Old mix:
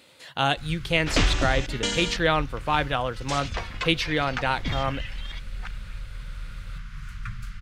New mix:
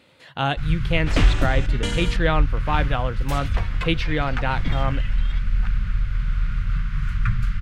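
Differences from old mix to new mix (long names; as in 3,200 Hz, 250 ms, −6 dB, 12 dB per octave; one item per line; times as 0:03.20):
first sound +9.0 dB
second sound: remove low-pass filter 6,900 Hz 24 dB per octave
master: add bass and treble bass +5 dB, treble −10 dB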